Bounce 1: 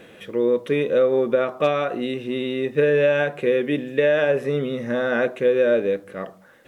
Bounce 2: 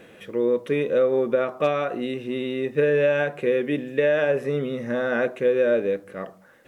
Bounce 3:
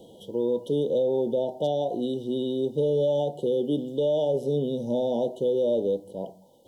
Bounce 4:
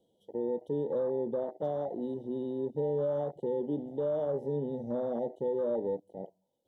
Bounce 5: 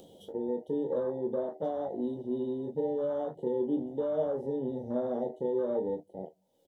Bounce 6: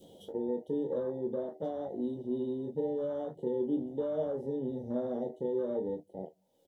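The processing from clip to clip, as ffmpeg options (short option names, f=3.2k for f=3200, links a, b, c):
-af "equalizer=f=3.5k:t=o:w=0.48:g=-3,volume=-2dB"
-filter_complex "[0:a]afftfilt=real='re*(1-between(b*sr/4096,990,2900))':imag='im*(1-between(b*sr/4096,990,2900))':win_size=4096:overlap=0.75,acrossover=split=230|960[a][b][c];[b]alimiter=limit=-20dB:level=0:latency=1:release=32[d];[a][d][c]amix=inputs=3:normalize=0"
-af "afwtdn=0.0447,volume=-7dB"
-filter_complex "[0:a]acompressor=mode=upward:threshold=-41dB:ratio=2.5,asplit=2[a][b];[b]aecho=0:1:11|24|37:0.376|0.447|0.299[c];[a][c]amix=inputs=2:normalize=0"
-af "adynamicequalizer=threshold=0.00447:dfrequency=960:dqfactor=0.72:tfrequency=960:tqfactor=0.72:attack=5:release=100:ratio=0.375:range=3.5:mode=cutabove:tftype=bell"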